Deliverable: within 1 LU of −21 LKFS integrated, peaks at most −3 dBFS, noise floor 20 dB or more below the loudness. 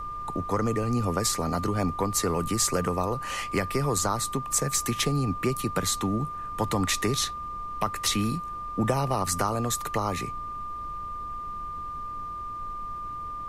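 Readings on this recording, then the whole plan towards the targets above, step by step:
interfering tone 1,200 Hz; level of the tone −33 dBFS; background noise floor −36 dBFS; target noise floor −48 dBFS; integrated loudness −28.0 LKFS; sample peak −11.0 dBFS; target loudness −21.0 LKFS
→ notch filter 1,200 Hz, Q 30
noise reduction from a noise print 12 dB
level +7 dB

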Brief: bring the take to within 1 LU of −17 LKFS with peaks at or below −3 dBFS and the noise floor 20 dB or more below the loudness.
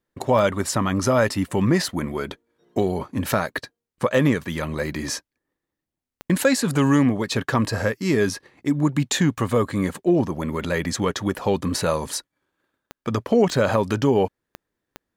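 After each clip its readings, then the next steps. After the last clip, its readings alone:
number of clicks 7; integrated loudness −22.5 LKFS; sample peak −5.0 dBFS; target loudness −17.0 LKFS
→ click removal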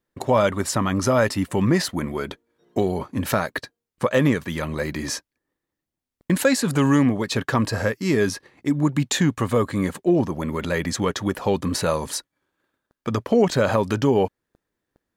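number of clicks 0; integrated loudness −22.5 LKFS; sample peak −5.0 dBFS; target loudness −17.0 LKFS
→ level +5.5 dB
brickwall limiter −3 dBFS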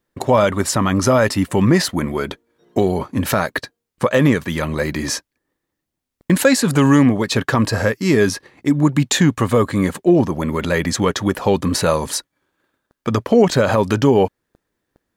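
integrated loudness −17.5 LKFS; sample peak −3.0 dBFS; background noise floor −80 dBFS

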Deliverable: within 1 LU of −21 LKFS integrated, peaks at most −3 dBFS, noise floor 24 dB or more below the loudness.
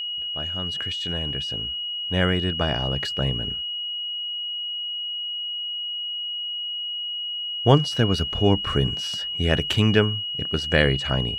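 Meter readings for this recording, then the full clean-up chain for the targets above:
interfering tone 2,900 Hz; level of the tone −27 dBFS; integrated loudness −24.0 LKFS; sample peak −3.0 dBFS; target loudness −21.0 LKFS
→ notch filter 2,900 Hz, Q 30
level +3 dB
brickwall limiter −3 dBFS

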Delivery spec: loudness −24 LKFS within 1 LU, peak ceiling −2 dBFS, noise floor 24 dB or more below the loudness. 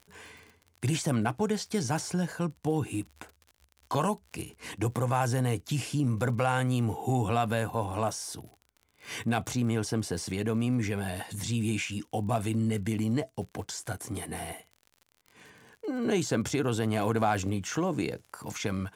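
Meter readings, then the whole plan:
crackle rate 52 per second; integrated loudness −30.5 LKFS; sample peak −12.0 dBFS; target loudness −24.0 LKFS
→ click removal
level +6.5 dB

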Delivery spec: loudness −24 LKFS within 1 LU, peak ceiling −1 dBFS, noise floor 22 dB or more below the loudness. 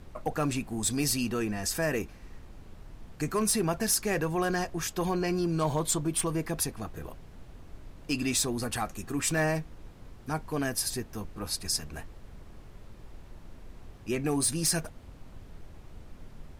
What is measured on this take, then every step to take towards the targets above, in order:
share of clipped samples 0.1%; peaks flattened at −20.0 dBFS; background noise floor −50 dBFS; target noise floor −52 dBFS; integrated loudness −30.0 LKFS; sample peak −20.0 dBFS; target loudness −24.0 LKFS
→ clipped peaks rebuilt −20 dBFS
noise reduction from a noise print 6 dB
level +6 dB

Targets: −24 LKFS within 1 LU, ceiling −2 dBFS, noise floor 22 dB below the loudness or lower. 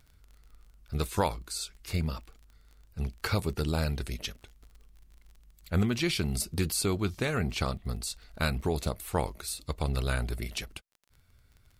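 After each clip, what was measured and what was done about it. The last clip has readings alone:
crackle rate 28 per second; integrated loudness −32.0 LKFS; sample peak −13.5 dBFS; target loudness −24.0 LKFS
→ click removal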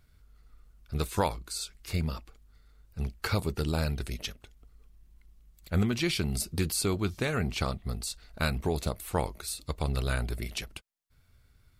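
crackle rate 0.085 per second; integrated loudness −32.0 LKFS; sample peak −13.5 dBFS; target loudness −24.0 LKFS
→ level +8 dB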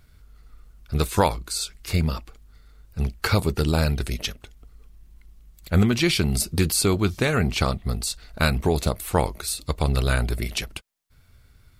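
integrated loudness −24.0 LKFS; sample peak −5.5 dBFS; background noise floor −55 dBFS

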